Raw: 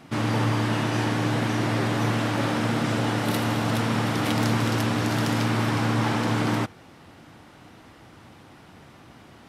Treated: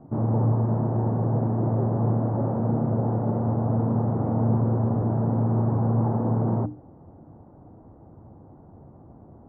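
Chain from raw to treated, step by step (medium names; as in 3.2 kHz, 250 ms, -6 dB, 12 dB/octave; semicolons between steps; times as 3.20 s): inverse Chebyshev low-pass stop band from 3.7 kHz, stop band 70 dB; bass shelf 130 Hz +8 dB; hum notches 60/120/180/240/300 Hz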